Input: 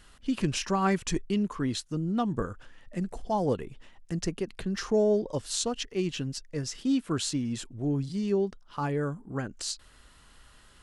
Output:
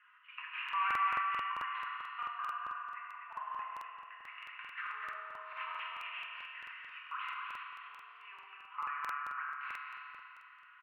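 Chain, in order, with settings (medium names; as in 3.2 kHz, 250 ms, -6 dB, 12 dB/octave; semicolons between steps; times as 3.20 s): tracing distortion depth 0.35 ms; Chebyshev band-pass 1–2.7 kHz, order 4; delay 247 ms -4.5 dB; reverberation RT60 3.0 s, pre-delay 4 ms, DRR -4.5 dB; crackling interface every 0.22 s, samples 2048, repeat, from 0.64 s; trim -3.5 dB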